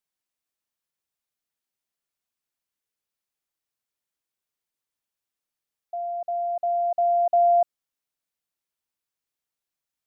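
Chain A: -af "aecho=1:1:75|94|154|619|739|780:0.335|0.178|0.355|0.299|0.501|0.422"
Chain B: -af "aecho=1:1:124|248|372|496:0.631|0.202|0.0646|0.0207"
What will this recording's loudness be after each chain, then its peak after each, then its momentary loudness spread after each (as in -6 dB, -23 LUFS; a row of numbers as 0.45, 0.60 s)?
-21.0, -19.0 LUFS; -10.0, -9.5 dBFS; 16, 17 LU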